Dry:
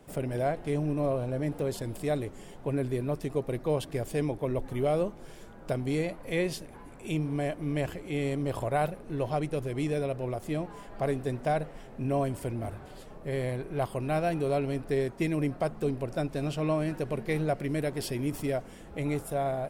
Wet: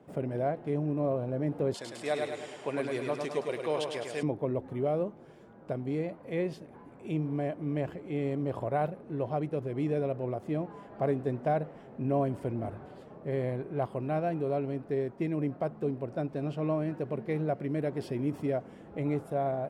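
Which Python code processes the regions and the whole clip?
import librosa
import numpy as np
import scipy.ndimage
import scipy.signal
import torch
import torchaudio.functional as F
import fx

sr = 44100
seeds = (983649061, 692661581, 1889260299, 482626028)

y = fx.chain(x, sr, fx.weighting(curve='ITU-R 468'),
    fx.echo_feedback(ms=104, feedback_pct=51, wet_db=-4), at=(1.74, 4.23))
y = fx.lowpass(y, sr, hz=1000.0, slope=6)
y = fx.rider(y, sr, range_db=10, speed_s=2.0)
y = scipy.signal.sosfilt(scipy.signal.butter(2, 120.0, 'highpass', fs=sr, output='sos'), y)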